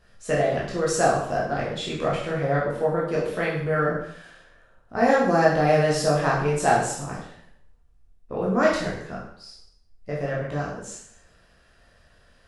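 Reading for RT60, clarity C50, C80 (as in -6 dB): 0.65 s, 3.0 dB, 6.5 dB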